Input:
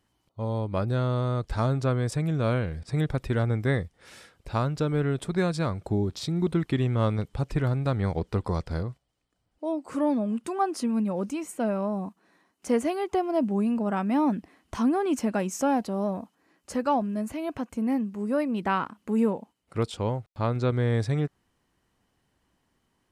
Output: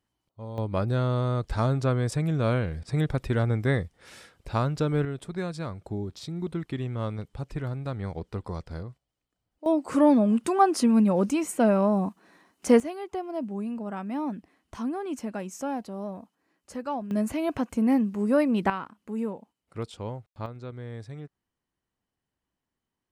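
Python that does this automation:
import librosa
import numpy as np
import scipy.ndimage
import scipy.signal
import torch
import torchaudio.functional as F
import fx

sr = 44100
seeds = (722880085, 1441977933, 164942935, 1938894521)

y = fx.gain(x, sr, db=fx.steps((0.0, -8.5), (0.58, 0.5), (5.05, -6.5), (9.66, 6.0), (12.8, -7.0), (17.11, 4.0), (18.7, -7.0), (20.46, -14.0)))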